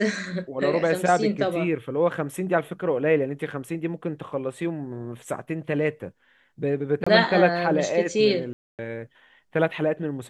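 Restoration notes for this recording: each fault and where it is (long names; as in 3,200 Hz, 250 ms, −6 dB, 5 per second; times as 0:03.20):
0:07.04–0:07.07: drop-out 25 ms
0:08.53–0:08.79: drop-out 258 ms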